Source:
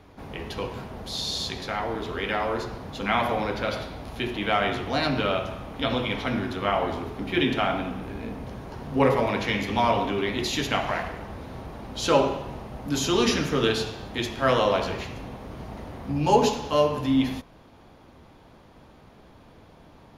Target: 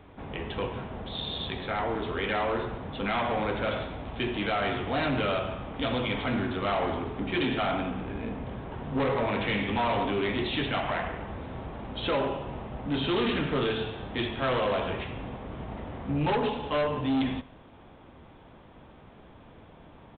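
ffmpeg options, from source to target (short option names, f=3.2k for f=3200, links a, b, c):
-af "alimiter=limit=-12dB:level=0:latency=1:release=428,aresample=8000,asoftclip=type=hard:threshold=-23.5dB,aresample=44100,aecho=1:1:139:0.0794"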